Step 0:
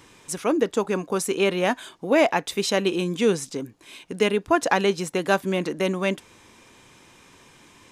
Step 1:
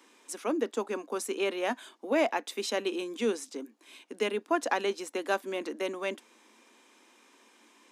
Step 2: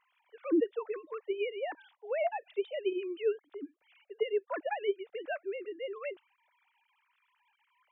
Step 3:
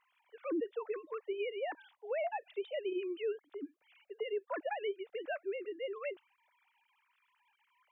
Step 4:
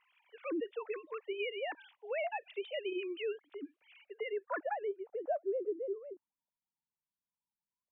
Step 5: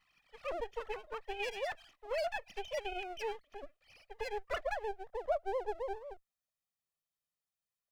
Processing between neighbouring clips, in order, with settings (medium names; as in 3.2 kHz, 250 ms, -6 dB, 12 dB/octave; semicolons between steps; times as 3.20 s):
Chebyshev high-pass 220 Hz, order 6; trim -7.5 dB
formants replaced by sine waves; trim -3 dB
peak limiter -28 dBFS, peak gain reduction 8.5 dB; trim -1 dB
low-pass sweep 2.8 kHz -> 200 Hz, 3.96–6.51 s; trim -1.5 dB
comb filter that takes the minimum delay 1.6 ms; trim +1.5 dB